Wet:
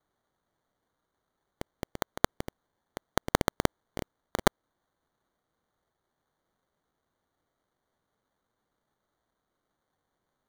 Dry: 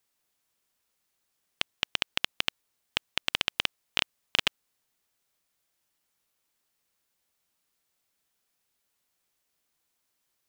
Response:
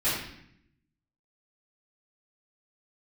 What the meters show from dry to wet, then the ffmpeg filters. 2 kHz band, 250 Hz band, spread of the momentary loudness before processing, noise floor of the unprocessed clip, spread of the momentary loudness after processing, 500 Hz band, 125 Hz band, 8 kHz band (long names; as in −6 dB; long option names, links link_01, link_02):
−5.0 dB, +13.0 dB, 7 LU, −79 dBFS, 18 LU, +12.0 dB, +12.5 dB, +3.0 dB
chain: -af "acrusher=samples=17:mix=1:aa=0.000001,aeval=exprs='0.631*(cos(1*acos(clip(val(0)/0.631,-1,1)))-cos(1*PI/2))+0.282*(cos(2*acos(clip(val(0)/0.631,-1,1)))-cos(2*PI/2))':channel_layout=same,volume=-3.5dB"